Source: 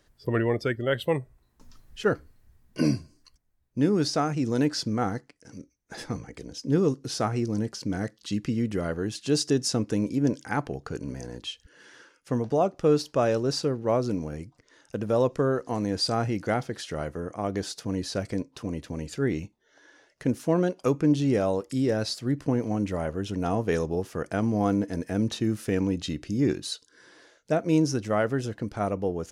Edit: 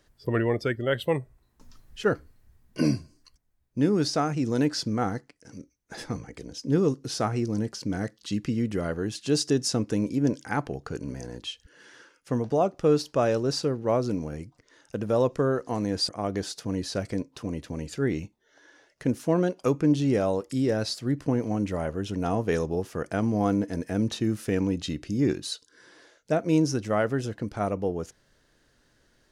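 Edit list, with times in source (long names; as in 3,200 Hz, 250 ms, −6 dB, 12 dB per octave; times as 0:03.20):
0:16.09–0:17.29: remove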